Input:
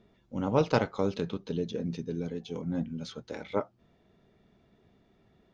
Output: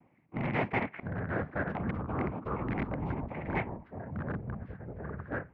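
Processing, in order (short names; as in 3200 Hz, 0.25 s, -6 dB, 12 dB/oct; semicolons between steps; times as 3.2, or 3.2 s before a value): tilt -3 dB/oct; noise vocoder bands 4; in parallel at -6 dB: wrapped overs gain 18 dB; 0.94–1.67 on the sum: flipped gate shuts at -20 dBFS, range -26 dB; ladder low-pass 2300 Hz, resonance 70%; echoes that change speed 0.576 s, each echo -5 st, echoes 3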